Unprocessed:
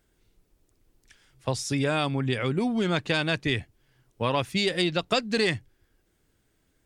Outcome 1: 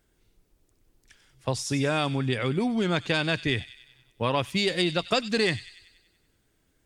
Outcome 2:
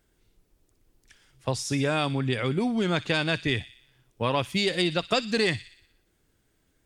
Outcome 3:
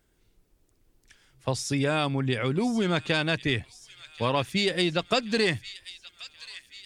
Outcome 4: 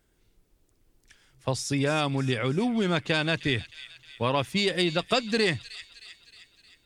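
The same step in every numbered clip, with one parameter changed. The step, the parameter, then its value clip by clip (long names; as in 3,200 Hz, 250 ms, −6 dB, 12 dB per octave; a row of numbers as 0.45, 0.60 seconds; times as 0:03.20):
delay with a high-pass on its return, delay time: 95, 60, 1,081, 311 milliseconds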